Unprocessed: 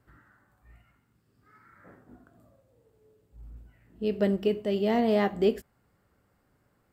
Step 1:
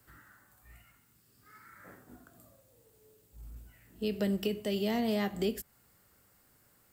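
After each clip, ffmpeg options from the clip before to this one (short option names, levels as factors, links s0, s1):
-filter_complex "[0:a]acrossover=split=220[s0][s1];[s1]acompressor=threshold=0.0251:ratio=4[s2];[s0][s2]amix=inputs=2:normalize=0,acrossover=split=260[s3][s4];[s4]crystalizer=i=5.5:c=0[s5];[s3][s5]amix=inputs=2:normalize=0,volume=0.841"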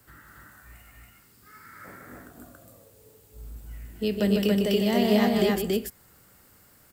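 -af "aecho=1:1:151.6|279.9:0.501|0.891,volume=2"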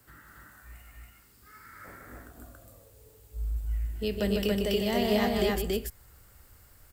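-af "asubboost=boost=9.5:cutoff=62,volume=0.794"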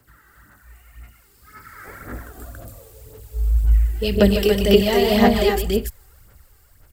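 -af "dynaudnorm=f=310:g=11:m=3.76,aphaser=in_gain=1:out_gain=1:delay=2.6:decay=0.56:speed=1.9:type=sinusoidal,volume=0.841"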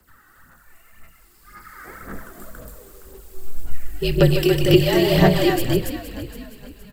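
-filter_complex "[0:a]asplit=5[s0][s1][s2][s3][s4];[s1]adelay=467,afreqshift=-52,volume=0.224[s5];[s2]adelay=934,afreqshift=-104,volume=0.0923[s6];[s3]adelay=1401,afreqshift=-156,volume=0.0376[s7];[s4]adelay=1868,afreqshift=-208,volume=0.0155[s8];[s0][s5][s6][s7][s8]amix=inputs=5:normalize=0,afreqshift=-50"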